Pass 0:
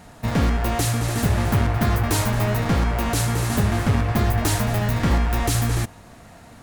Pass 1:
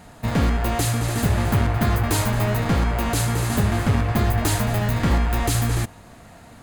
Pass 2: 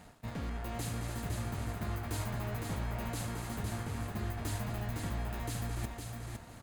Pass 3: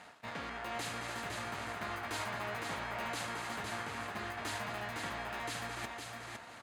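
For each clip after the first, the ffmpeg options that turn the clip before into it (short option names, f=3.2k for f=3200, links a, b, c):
-af "bandreject=f=5.6k:w=14"
-af "areverse,acompressor=threshold=-30dB:ratio=5,areverse,aecho=1:1:509|1018|1527:0.596|0.107|0.0193,aeval=exprs='sgn(val(0))*max(abs(val(0))-0.00158,0)':c=same,volume=-6.5dB"
-af "bandpass=f=1.9k:t=q:w=0.57:csg=0,volume=7dB"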